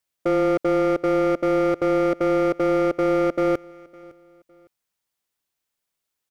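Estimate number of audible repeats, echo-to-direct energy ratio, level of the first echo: 2, -22.5 dB, -23.0 dB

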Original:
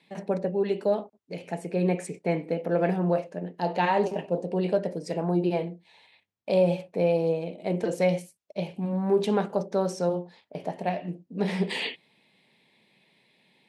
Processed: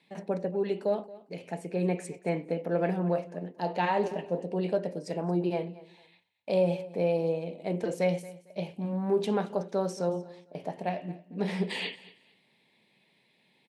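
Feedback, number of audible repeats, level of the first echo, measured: 24%, 2, -19.0 dB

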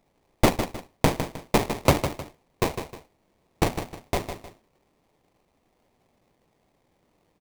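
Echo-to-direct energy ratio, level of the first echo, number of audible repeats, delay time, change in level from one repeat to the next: -8.5 dB, -9.0 dB, 2, 155 ms, -9.5 dB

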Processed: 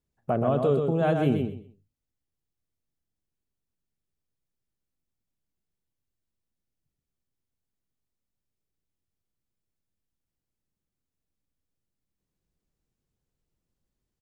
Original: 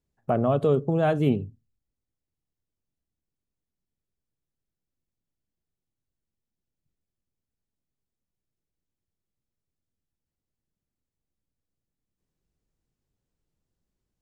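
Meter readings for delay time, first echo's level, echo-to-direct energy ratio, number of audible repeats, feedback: 127 ms, -5.0 dB, -5.0 dB, 3, 21%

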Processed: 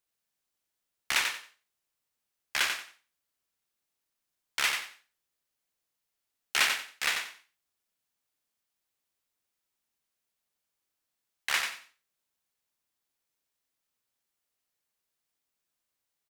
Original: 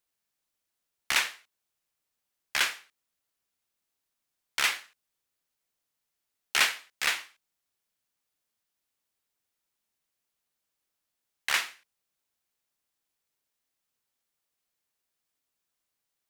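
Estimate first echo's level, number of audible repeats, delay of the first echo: -6.0 dB, 3, 91 ms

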